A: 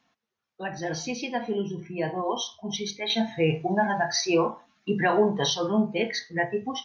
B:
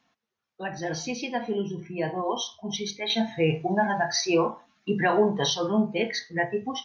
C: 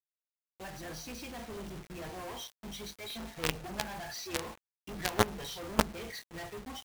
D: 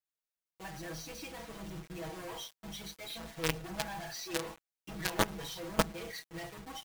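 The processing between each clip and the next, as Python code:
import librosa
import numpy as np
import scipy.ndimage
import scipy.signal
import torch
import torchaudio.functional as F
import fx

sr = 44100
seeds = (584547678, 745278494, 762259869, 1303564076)

y1 = x
y2 = fx.octave_divider(y1, sr, octaves=2, level_db=-4.0)
y2 = fx.quant_companded(y2, sr, bits=2)
y2 = fx.upward_expand(y2, sr, threshold_db=-32.0, expansion=1.5)
y2 = y2 * librosa.db_to_amplitude(-9.0)
y3 = y2 + 0.94 * np.pad(y2, (int(6.2 * sr / 1000.0), 0))[:len(y2)]
y3 = y3 * librosa.db_to_amplitude(-3.5)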